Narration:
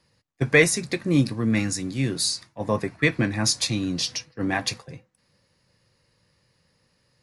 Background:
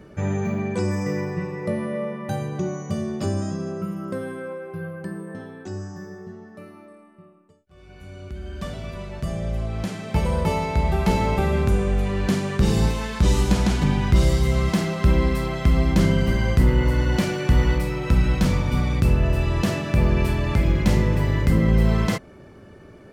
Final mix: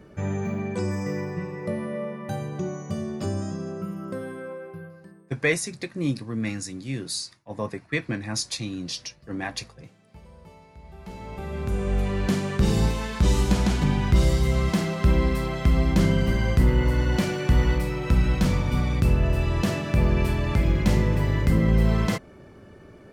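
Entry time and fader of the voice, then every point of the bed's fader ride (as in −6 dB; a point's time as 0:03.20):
4.90 s, −6.0 dB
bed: 0:04.66 −3.5 dB
0:05.44 −26.5 dB
0:10.78 −26.5 dB
0:11.96 −2 dB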